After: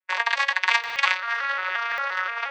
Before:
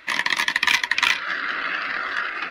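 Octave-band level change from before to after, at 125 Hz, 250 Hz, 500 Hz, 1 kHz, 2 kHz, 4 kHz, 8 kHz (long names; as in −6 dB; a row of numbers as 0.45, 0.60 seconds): can't be measured, below −20 dB, +2.0 dB, +1.5 dB, −2.0 dB, −5.0 dB, −8.5 dB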